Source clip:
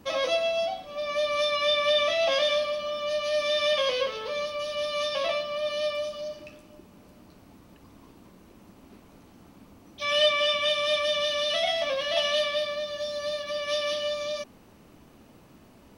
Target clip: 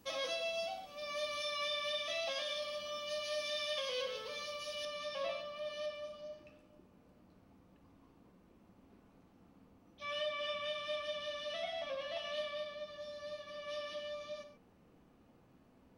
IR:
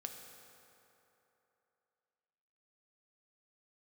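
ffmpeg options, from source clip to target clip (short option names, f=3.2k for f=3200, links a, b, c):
-filter_complex "[0:a]asetnsamples=n=441:p=0,asendcmd='4.85 highshelf g -4;5.86 highshelf g -10',highshelf=f=3.5k:g=9,alimiter=limit=-17.5dB:level=0:latency=1:release=146[a];[1:a]atrim=start_sample=2205,atrim=end_sample=6174[b];[a][b]afir=irnorm=-1:irlink=0,volume=-8dB"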